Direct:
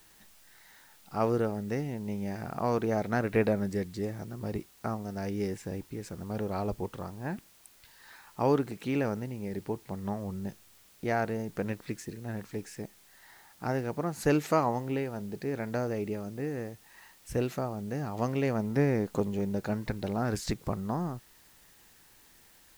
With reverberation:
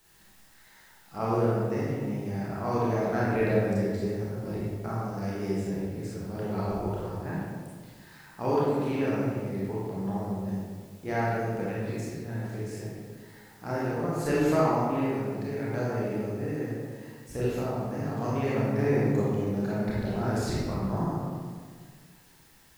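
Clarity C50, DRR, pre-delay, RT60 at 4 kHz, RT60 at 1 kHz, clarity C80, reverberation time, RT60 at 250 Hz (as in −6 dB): −3.0 dB, −7.5 dB, 26 ms, 1.0 s, 1.6 s, 0.0 dB, 1.7 s, 2.0 s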